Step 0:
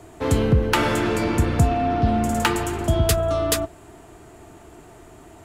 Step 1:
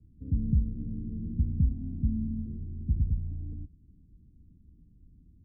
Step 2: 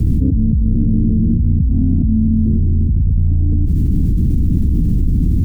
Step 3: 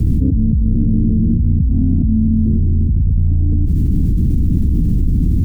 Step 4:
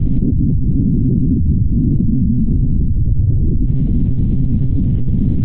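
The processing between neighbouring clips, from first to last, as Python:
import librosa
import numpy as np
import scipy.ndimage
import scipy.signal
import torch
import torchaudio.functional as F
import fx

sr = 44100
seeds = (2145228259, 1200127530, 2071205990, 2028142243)

y1 = scipy.signal.sosfilt(scipy.signal.cheby2(4, 70, 840.0, 'lowpass', fs=sr, output='sos'), x)
y1 = y1 + 0.5 * np.pad(y1, (int(4.1 * sr / 1000.0), 0))[:len(y1)]
y1 = y1 * librosa.db_to_amplitude(-5.0)
y2 = fx.env_flatten(y1, sr, amount_pct=100)
y2 = y2 * librosa.db_to_amplitude(7.0)
y3 = y2
y4 = fx.lpc_monotone(y3, sr, seeds[0], pitch_hz=130.0, order=8)
y4 = fx.record_warp(y4, sr, rpm=45.0, depth_cents=100.0)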